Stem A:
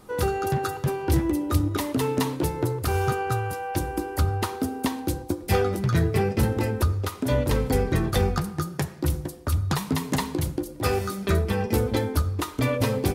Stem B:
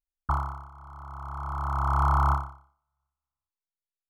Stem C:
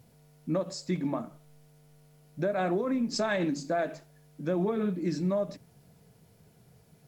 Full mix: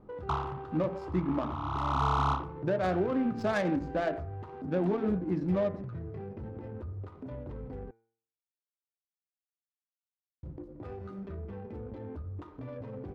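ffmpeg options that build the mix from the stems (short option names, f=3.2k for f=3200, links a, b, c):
-filter_complex "[0:a]acompressor=threshold=-33dB:ratio=4,alimiter=level_in=5.5dB:limit=-24dB:level=0:latency=1:release=30,volume=-5.5dB,volume=-3dB,asplit=3[a][b][c];[a]atrim=end=7.91,asetpts=PTS-STARTPTS,afade=t=out:st=7.906:d=0.004:c=hsin[d];[b]atrim=start=7.91:end=10.43,asetpts=PTS-STARTPTS,volume=0[e];[c]atrim=start=10.43,asetpts=PTS-STARTPTS,afade=t=in:d=0.004:c=hsin[f];[d][e][f]concat=n=3:v=0:a=1[g];[1:a]highpass=f=83:w=0.5412,highpass=f=83:w=1.3066,volume=-2.5dB[h];[2:a]adelay=250,volume=0dB[i];[g][h][i]amix=inputs=3:normalize=0,adynamicsmooth=sensitivity=3:basefreq=760,bandreject=f=113.6:t=h:w=4,bandreject=f=227.2:t=h:w=4,bandreject=f=340.8:t=h:w=4,bandreject=f=454.4:t=h:w=4,bandreject=f=568:t=h:w=4,bandreject=f=681.6:t=h:w=4,bandreject=f=795.2:t=h:w=4,bandreject=f=908.8:t=h:w=4,bandreject=f=1.0224k:t=h:w=4,bandreject=f=1.136k:t=h:w=4,bandreject=f=1.2496k:t=h:w=4,bandreject=f=1.3632k:t=h:w=4,bandreject=f=1.4768k:t=h:w=4,bandreject=f=1.5904k:t=h:w=4,bandreject=f=1.704k:t=h:w=4,bandreject=f=1.8176k:t=h:w=4,bandreject=f=1.9312k:t=h:w=4,bandreject=f=2.0448k:t=h:w=4,bandreject=f=2.1584k:t=h:w=4,bandreject=f=2.272k:t=h:w=4,bandreject=f=2.3856k:t=h:w=4"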